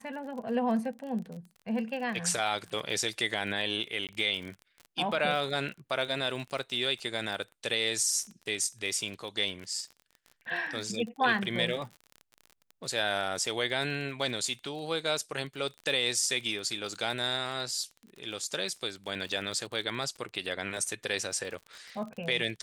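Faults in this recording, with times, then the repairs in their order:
surface crackle 31 per second −37 dBFS
0:04.07–0:04.09: drop-out 18 ms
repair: click removal
repair the gap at 0:04.07, 18 ms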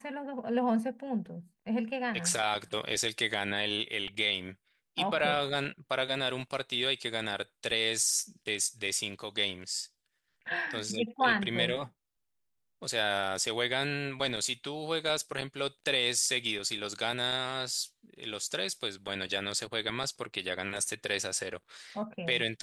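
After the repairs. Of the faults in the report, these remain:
none of them is left

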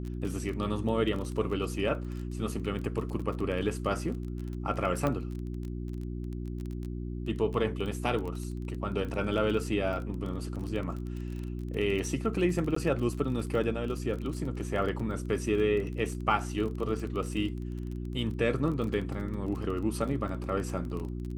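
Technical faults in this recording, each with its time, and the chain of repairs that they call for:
surface crackle 24 per second −35 dBFS
mains hum 60 Hz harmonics 6 −36 dBFS
0:05.07: click −17 dBFS
0:12.75–0:12.76: drop-out 14 ms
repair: click removal
hum removal 60 Hz, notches 6
repair the gap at 0:12.75, 14 ms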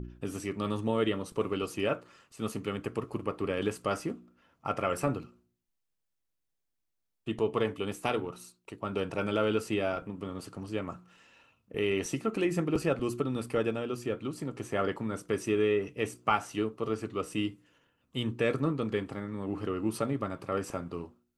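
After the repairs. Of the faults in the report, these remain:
none of them is left

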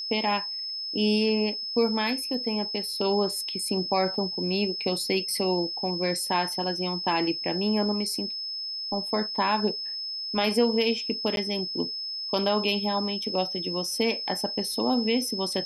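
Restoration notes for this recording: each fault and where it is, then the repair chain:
whistle 5,200 Hz −31 dBFS
0:11.36–0:11.37: drop-out 12 ms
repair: notch filter 5,200 Hz, Q 30
repair the gap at 0:11.36, 12 ms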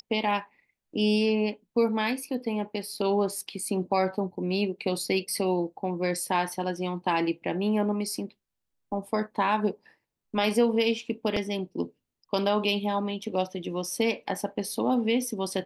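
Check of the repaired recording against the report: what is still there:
none of them is left

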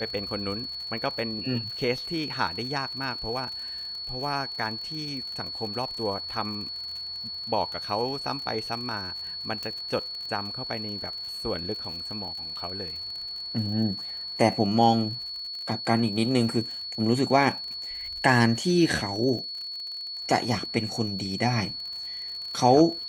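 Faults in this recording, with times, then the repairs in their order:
surface crackle 55 per second −35 dBFS
whistle 4,400 Hz −33 dBFS
0:09.63: click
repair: click removal
notch filter 4,400 Hz, Q 30

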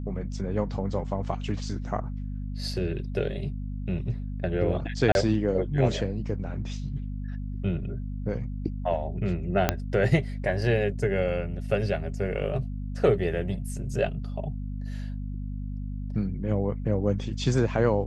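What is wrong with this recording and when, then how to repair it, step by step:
mains hum 50 Hz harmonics 5 −33 dBFS
0:05.12–0:05.15: drop-out 31 ms
0:09.69: click −6 dBFS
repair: click removal
hum removal 50 Hz, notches 5
repair the gap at 0:05.12, 31 ms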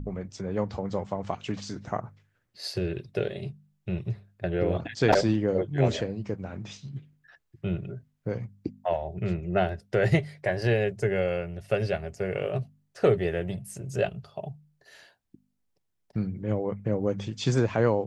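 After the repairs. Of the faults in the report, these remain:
0:09.69: click

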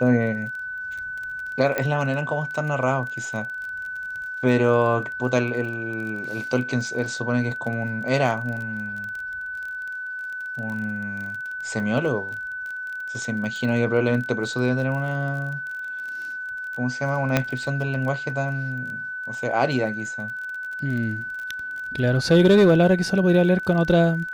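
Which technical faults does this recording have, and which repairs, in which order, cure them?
surface crackle 26 per second −31 dBFS
whistle 1,500 Hz −29 dBFS
0:01.78: click −10 dBFS
0:17.37: click −5 dBFS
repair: click removal
notch filter 1,500 Hz, Q 30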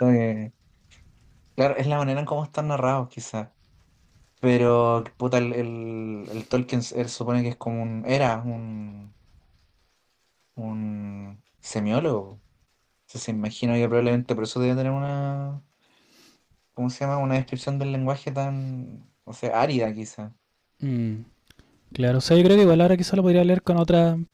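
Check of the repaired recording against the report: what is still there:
none of them is left

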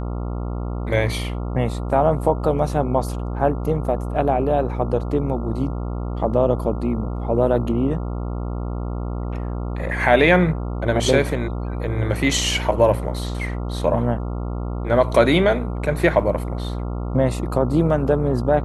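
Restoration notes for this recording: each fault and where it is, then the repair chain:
mains buzz 60 Hz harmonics 23 −26 dBFS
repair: hum removal 60 Hz, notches 23

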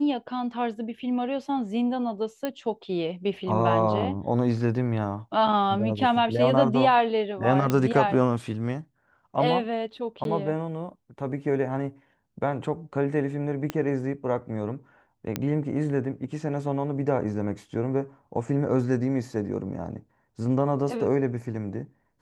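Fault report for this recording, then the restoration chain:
0:02.45: click −15 dBFS
0:07.70: click −11 dBFS
0:10.24–0:10.25: drop-out 12 ms
0:13.70: click −14 dBFS
0:15.36: click −12 dBFS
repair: click removal
repair the gap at 0:10.24, 12 ms

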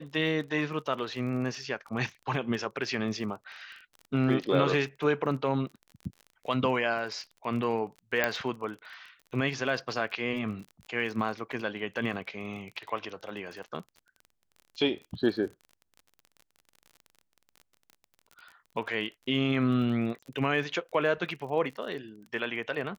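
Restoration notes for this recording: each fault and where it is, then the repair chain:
surface crackle 32 per second −39 dBFS
0:08.24: click −11 dBFS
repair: click removal

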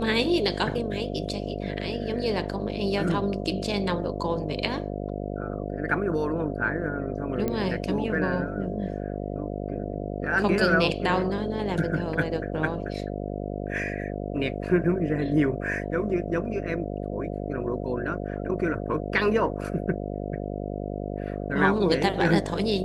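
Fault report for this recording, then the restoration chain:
mains buzz 50 Hz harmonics 14 −32 dBFS
0:07.48: click −15 dBFS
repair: click removal
hum removal 50 Hz, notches 14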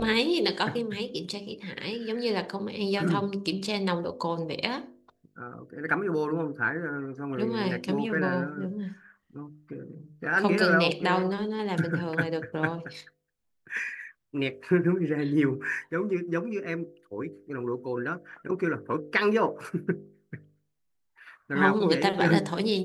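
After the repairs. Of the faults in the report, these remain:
none of them is left

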